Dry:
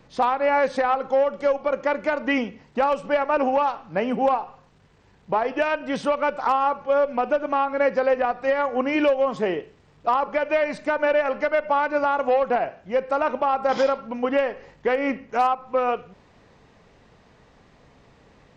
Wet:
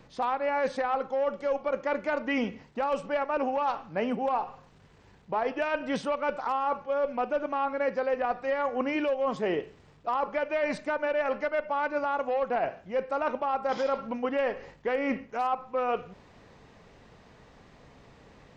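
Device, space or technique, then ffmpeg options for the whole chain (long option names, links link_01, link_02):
compression on the reversed sound: -af "areverse,acompressor=threshold=-25dB:ratio=6,areverse"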